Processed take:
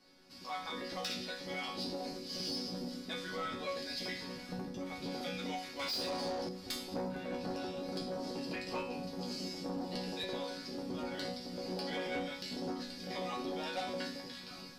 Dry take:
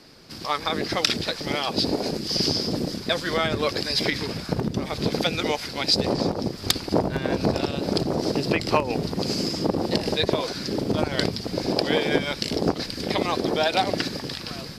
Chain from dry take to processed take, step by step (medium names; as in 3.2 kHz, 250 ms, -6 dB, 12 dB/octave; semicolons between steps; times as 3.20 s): chord resonator F#3 sus4, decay 0.51 s; saturation -36.5 dBFS, distortion -17 dB; 5.79–6.49 s: overdrive pedal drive 16 dB, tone 6.3 kHz, clips at -36.5 dBFS; trim +5.5 dB